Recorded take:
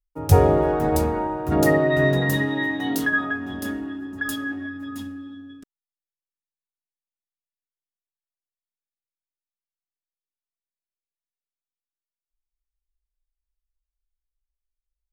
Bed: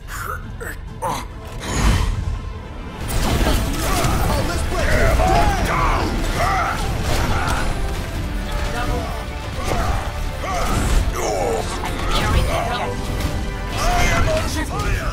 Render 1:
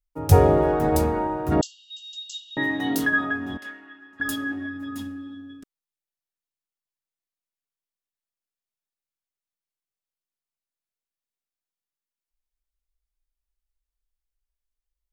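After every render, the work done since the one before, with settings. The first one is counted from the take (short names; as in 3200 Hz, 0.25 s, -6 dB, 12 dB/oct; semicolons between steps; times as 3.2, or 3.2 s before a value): 1.61–2.57 brick-wall FIR band-pass 2700–7800 Hz; 3.57–4.2 band-pass 2000 Hz, Q 1.5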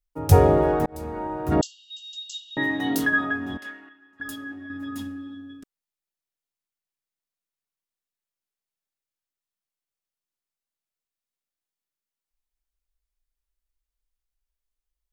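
0.86–1.54 fade in; 3.89–4.7 gain -7.5 dB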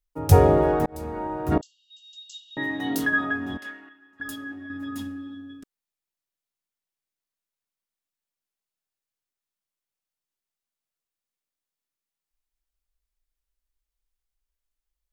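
1.58–3.39 fade in, from -18.5 dB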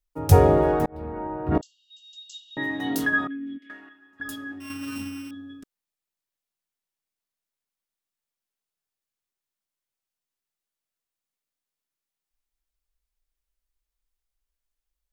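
0.88–1.55 air absorption 430 m; 3.27–3.7 vowel filter i; 4.6–5.31 sample sorter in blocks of 16 samples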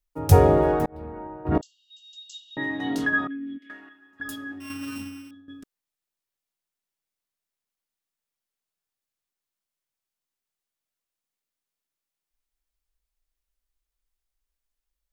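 0.72–1.45 fade out, to -9 dB; 2.56–3.61 air absorption 66 m; 4.83–5.48 fade out, to -13.5 dB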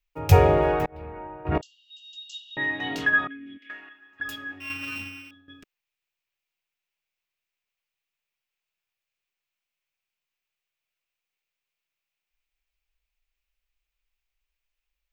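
fifteen-band EQ 250 Hz -10 dB, 2500 Hz +12 dB, 10000 Hz -9 dB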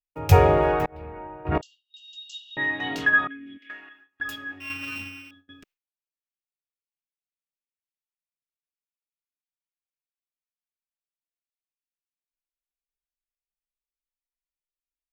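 gate with hold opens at -41 dBFS; dynamic EQ 1200 Hz, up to +3 dB, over -36 dBFS, Q 1.2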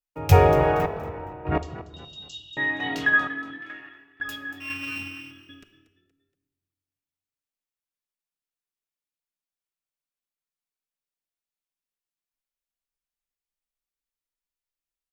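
frequency-shifting echo 0.235 s, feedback 37%, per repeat +40 Hz, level -15 dB; shoebox room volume 880 m³, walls mixed, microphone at 0.35 m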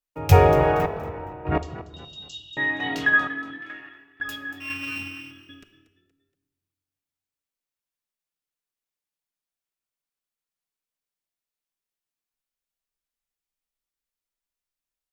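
gain +1 dB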